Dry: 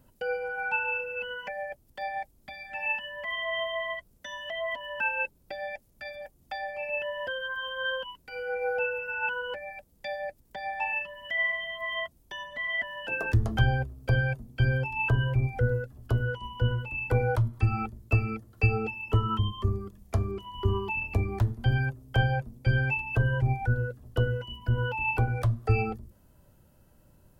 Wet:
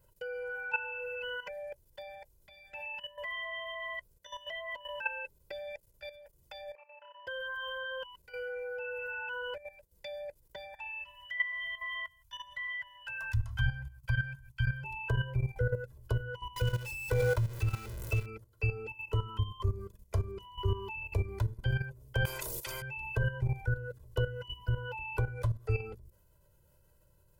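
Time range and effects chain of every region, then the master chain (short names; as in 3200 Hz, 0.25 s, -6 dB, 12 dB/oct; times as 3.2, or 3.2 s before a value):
6.75–7.27 band-pass 1200 Hz, Q 4.7 + flutter echo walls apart 5.1 m, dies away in 0.59 s
10.74–14.84 Chebyshev band-stop 120–1100 Hz + echo 0.159 s -24 dB
16.56–18.26 zero-crossing step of -32.5 dBFS + bell 900 Hz -4.5 dB 0.36 oct
22.25–22.82 high shelf 2800 Hz +11.5 dB + spectral compressor 10:1
whole clip: level quantiser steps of 13 dB; high shelf 4800 Hz +5 dB; comb 2 ms, depth 82%; gain -4.5 dB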